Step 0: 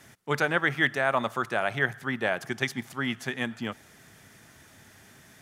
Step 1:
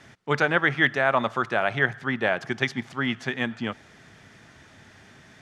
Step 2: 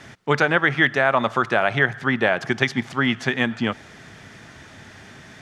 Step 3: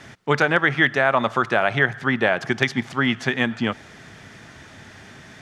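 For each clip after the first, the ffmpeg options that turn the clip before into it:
ffmpeg -i in.wav -af "lowpass=4900,volume=3.5dB" out.wav
ffmpeg -i in.wav -af "acompressor=threshold=-24dB:ratio=2,volume=7.5dB" out.wav
ffmpeg -i in.wav -af "asoftclip=type=hard:threshold=-4dB" out.wav

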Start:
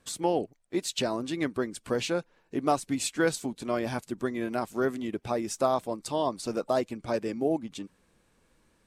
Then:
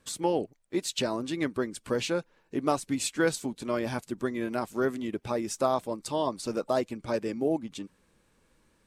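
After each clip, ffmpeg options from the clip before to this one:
ffmpeg -i in.wav -af "bandreject=frequency=710:width=12" out.wav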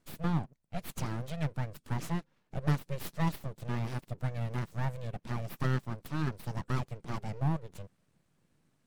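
ffmpeg -i in.wav -af "aeval=exprs='abs(val(0))':channel_layout=same,equalizer=frequency=150:width_type=o:width=1.5:gain=14,volume=-8dB" out.wav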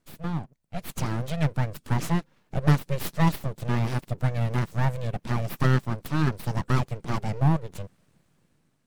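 ffmpeg -i in.wav -af "dynaudnorm=framelen=260:gausssize=7:maxgain=9dB" out.wav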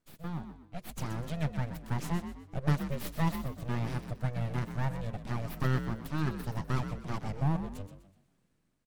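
ffmpeg -i in.wav -filter_complex "[0:a]asplit=5[link_01][link_02][link_03][link_04][link_05];[link_02]adelay=125,afreqshift=46,volume=-10dB[link_06];[link_03]adelay=250,afreqshift=92,volume=-19.1dB[link_07];[link_04]adelay=375,afreqshift=138,volume=-28.2dB[link_08];[link_05]adelay=500,afreqshift=184,volume=-37.4dB[link_09];[link_01][link_06][link_07][link_08][link_09]amix=inputs=5:normalize=0,volume=-8dB" out.wav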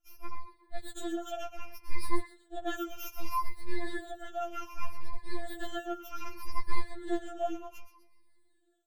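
ffmpeg -i in.wav -af "afftfilt=real='re*pow(10,22/40*sin(2*PI*(0.89*log(max(b,1)*sr/1024/100)/log(2)-(-0.65)*(pts-256)/sr)))':imag='im*pow(10,22/40*sin(2*PI*(0.89*log(max(b,1)*sr/1024/100)/log(2)-(-0.65)*(pts-256)/sr)))':win_size=1024:overlap=0.75,afftfilt=real='re*4*eq(mod(b,16),0)':imag='im*4*eq(mod(b,16),0)':win_size=2048:overlap=0.75,volume=-1.5dB" out.wav

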